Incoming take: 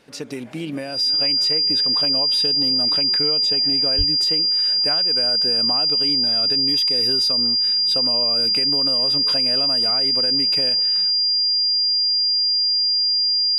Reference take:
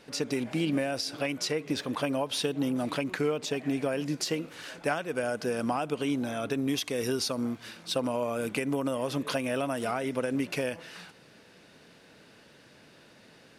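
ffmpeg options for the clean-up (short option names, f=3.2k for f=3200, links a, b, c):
-filter_complex "[0:a]bandreject=f=4.8k:w=30,asplit=3[a][b][c];[a]afade=t=out:st=3.97:d=0.02[d];[b]highpass=f=140:w=0.5412,highpass=f=140:w=1.3066,afade=t=in:st=3.97:d=0.02,afade=t=out:st=4.09:d=0.02[e];[c]afade=t=in:st=4.09:d=0.02[f];[d][e][f]amix=inputs=3:normalize=0"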